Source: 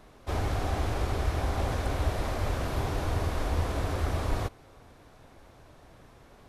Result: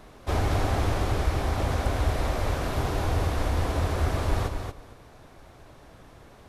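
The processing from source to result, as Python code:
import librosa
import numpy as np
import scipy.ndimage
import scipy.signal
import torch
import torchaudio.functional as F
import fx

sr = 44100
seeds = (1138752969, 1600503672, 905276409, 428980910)

p1 = fx.rider(x, sr, range_db=10, speed_s=2.0)
p2 = p1 + fx.echo_feedback(p1, sr, ms=232, feedback_pct=15, wet_db=-6, dry=0)
y = p2 * librosa.db_to_amplitude(2.5)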